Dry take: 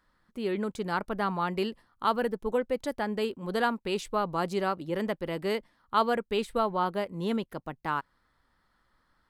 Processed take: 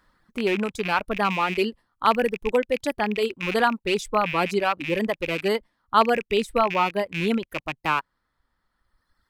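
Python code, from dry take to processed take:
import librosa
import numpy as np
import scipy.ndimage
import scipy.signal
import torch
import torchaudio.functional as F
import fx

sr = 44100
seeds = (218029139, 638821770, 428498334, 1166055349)

y = fx.rattle_buzz(x, sr, strikes_db=-43.0, level_db=-23.0)
y = fx.dereverb_blind(y, sr, rt60_s=1.9)
y = F.gain(torch.from_numpy(y), 7.0).numpy()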